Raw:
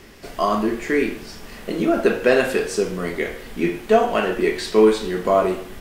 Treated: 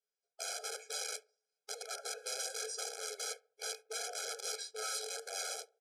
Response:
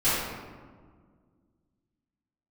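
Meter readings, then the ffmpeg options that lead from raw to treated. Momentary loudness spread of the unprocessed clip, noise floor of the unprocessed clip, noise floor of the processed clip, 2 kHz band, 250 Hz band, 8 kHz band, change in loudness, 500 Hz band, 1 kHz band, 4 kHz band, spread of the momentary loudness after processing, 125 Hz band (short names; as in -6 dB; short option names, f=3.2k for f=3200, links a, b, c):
11 LU, -39 dBFS, under -85 dBFS, -19.5 dB, under -40 dB, 0.0 dB, -19.5 dB, -28.0 dB, -23.5 dB, -7.0 dB, 4 LU, under -40 dB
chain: -filter_complex "[0:a]agate=range=-41dB:threshold=-28dB:ratio=16:detection=peak,areverse,acompressor=threshold=-29dB:ratio=10,areverse,flanger=delay=8.9:depth=3:regen=-26:speed=0.69:shape=triangular,aeval=exprs='(mod(37.6*val(0)+1,2)-1)/37.6':c=same,crystalizer=i=2:c=0,highpass=f=230:w=0.5412,highpass=f=230:w=1.3066,equalizer=f=370:t=q:w=4:g=4,equalizer=f=600:t=q:w=4:g=-5,equalizer=f=1.9k:t=q:w=4:g=-5,equalizer=f=2.8k:t=q:w=4:g=-9,equalizer=f=5.4k:t=q:w=4:g=6,lowpass=f=9.9k:w=0.5412,lowpass=f=9.9k:w=1.3066,asplit=2[a][b];[b]adelay=69,lowpass=f=1.2k:p=1,volume=-21dB,asplit=2[c][d];[d]adelay=69,lowpass=f=1.2k:p=1,volume=0.45,asplit=2[e][f];[f]adelay=69,lowpass=f=1.2k:p=1,volume=0.45[g];[a][c][e][g]amix=inputs=4:normalize=0,afftfilt=real='re*eq(mod(floor(b*sr/1024/430),2),1)':imag='im*eq(mod(floor(b*sr/1024/430),2),1)':win_size=1024:overlap=0.75,volume=-2.5dB"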